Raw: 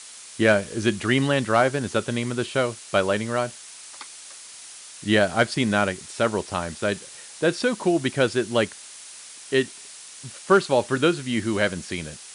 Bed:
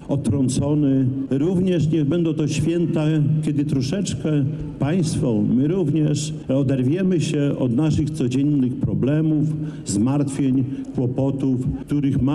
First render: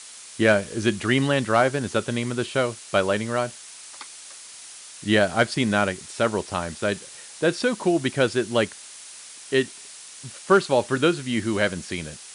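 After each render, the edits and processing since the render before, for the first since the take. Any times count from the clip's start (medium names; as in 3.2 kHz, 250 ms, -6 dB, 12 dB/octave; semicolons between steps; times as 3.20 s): no audible change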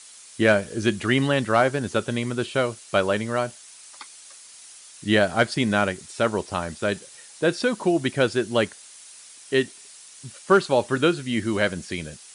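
noise reduction 6 dB, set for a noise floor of -43 dBFS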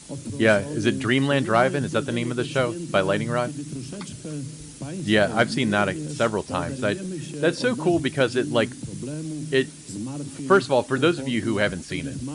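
add bed -13 dB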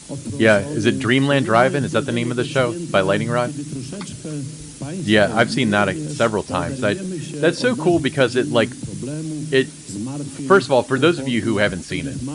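trim +4.5 dB; peak limiter -2 dBFS, peak gain reduction 0.5 dB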